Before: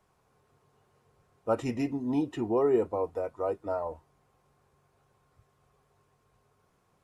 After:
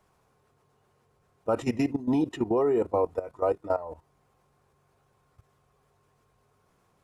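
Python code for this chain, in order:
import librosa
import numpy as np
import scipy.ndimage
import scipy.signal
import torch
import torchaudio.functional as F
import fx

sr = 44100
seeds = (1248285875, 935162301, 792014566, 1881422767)

y = fx.level_steps(x, sr, step_db=15)
y = y * 10.0 ** (7.0 / 20.0)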